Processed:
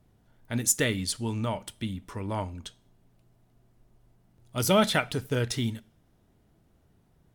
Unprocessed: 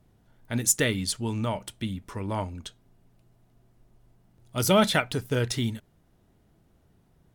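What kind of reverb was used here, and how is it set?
two-slope reverb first 0.44 s, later 1.8 s, from -26 dB, DRR 18.5 dB; trim -1.5 dB

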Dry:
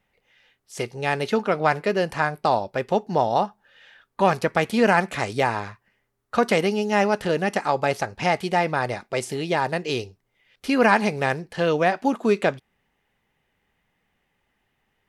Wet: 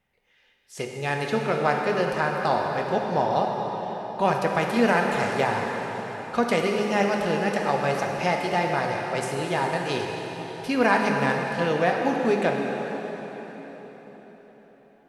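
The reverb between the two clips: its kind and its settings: plate-style reverb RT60 4.8 s, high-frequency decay 0.85×, DRR 0.5 dB; trim -4 dB

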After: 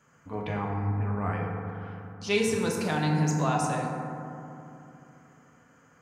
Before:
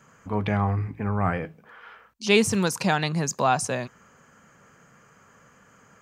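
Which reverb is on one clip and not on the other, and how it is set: FDN reverb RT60 2.9 s, low-frequency decay 1.35×, high-frequency decay 0.3×, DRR -1.5 dB; trim -8.5 dB

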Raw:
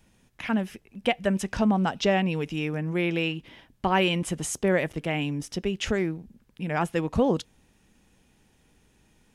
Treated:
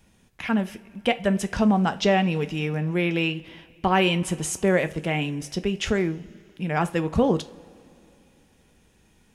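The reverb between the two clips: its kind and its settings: two-slope reverb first 0.29 s, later 2.8 s, from -20 dB, DRR 10 dB; trim +2 dB

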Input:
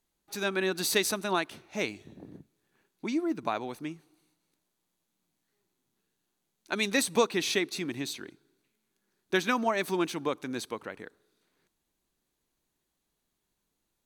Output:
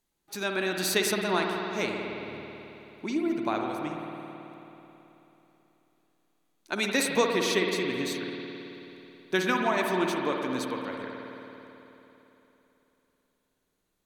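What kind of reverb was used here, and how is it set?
spring tank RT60 3.4 s, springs 54 ms, chirp 30 ms, DRR 1 dB

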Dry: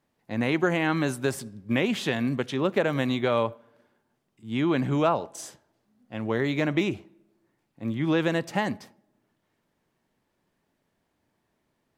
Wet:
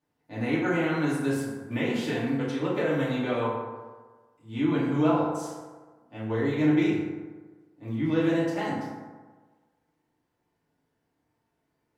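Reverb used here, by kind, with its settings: FDN reverb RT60 1.4 s, low-frequency decay 0.9×, high-frequency decay 0.45×, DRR -9 dB; trim -12 dB

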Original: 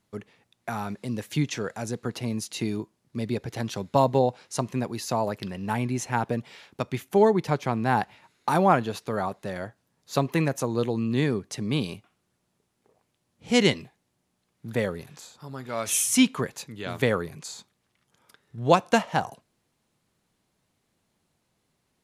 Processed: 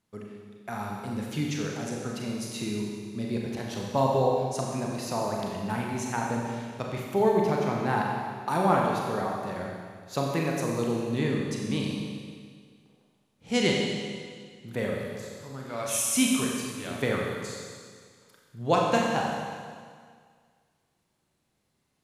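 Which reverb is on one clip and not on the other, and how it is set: Schroeder reverb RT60 1.9 s, combs from 30 ms, DRR -1.5 dB; trim -5.5 dB

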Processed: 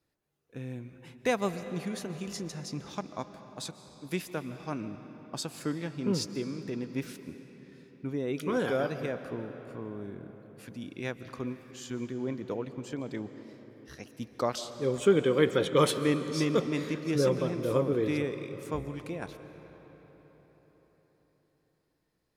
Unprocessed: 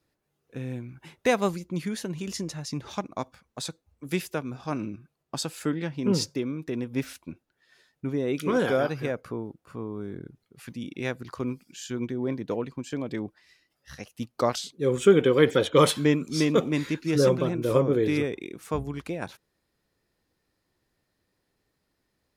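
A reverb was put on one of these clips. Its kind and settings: algorithmic reverb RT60 4.8 s, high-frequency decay 0.65×, pre-delay 100 ms, DRR 10.5 dB; trim -5 dB

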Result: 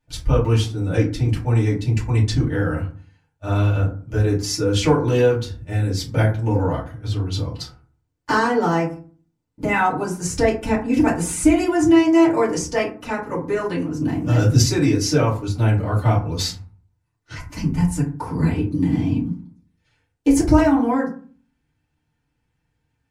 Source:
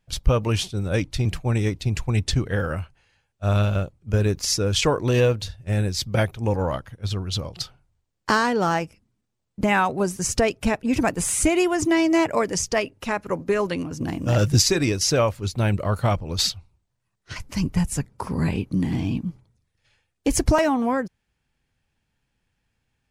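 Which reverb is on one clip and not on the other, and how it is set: FDN reverb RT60 0.41 s, low-frequency decay 1.45×, high-frequency decay 0.45×, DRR -8 dB; trim -8 dB

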